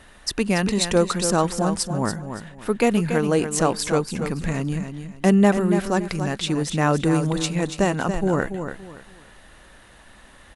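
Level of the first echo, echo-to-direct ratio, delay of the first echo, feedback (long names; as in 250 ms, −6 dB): −8.5 dB, −8.0 dB, 284 ms, 27%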